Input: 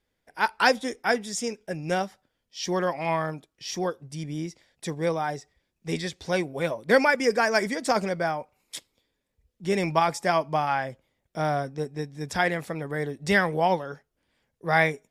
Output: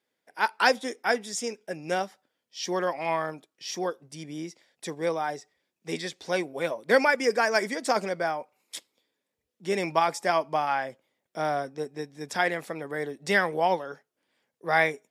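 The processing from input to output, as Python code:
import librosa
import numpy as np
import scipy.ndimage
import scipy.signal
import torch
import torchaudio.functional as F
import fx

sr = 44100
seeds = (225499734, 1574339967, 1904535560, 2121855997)

y = scipy.signal.sosfilt(scipy.signal.butter(2, 250.0, 'highpass', fs=sr, output='sos'), x)
y = F.gain(torch.from_numpy(y), -1.0).numpy()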